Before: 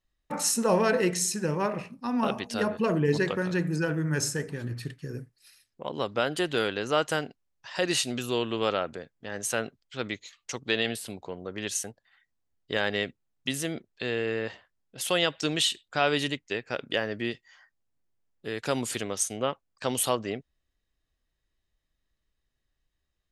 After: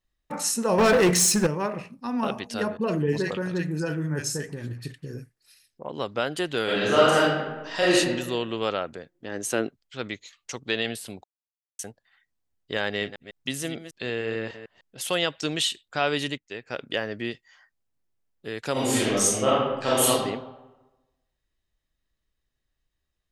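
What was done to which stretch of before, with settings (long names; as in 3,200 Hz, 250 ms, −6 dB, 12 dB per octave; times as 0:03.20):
0:00.78–0:01.47: leveller curve on the samples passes 3
0:02.77–0:05.90: multiband delay without the direct sound lows, highs 40 ms, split 1,500 Hz
0:06.64–0:07.94: thrown reverb, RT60 1.2 s, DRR −7.5 dB
0:09.11–0:09.67: parametric band 320 Hz +5 dB → +14.5 dB 0.83 octaves
0:11.24–0:11.79: silence
0:12.86–0:15.15: delay that plays each chunk backwards 150 ms, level −11 dB
0:16.38–0:16.79: fade in, from −13 dB
0:18.72–0:20.09: thrown reverb, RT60 1.1 s, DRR −8.5 dB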